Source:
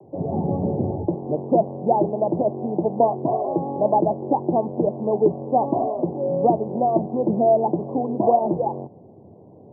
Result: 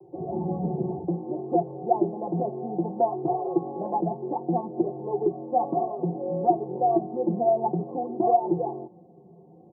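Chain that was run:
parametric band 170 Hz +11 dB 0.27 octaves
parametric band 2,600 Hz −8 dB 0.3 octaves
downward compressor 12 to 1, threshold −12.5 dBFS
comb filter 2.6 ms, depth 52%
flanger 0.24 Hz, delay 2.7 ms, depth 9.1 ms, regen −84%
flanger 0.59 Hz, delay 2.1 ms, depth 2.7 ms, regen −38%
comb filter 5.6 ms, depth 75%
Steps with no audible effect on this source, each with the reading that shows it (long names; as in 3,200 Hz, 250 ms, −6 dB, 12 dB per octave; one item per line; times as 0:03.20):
parametric band 2,600 Hz: nothing at its input above 1,000 Hz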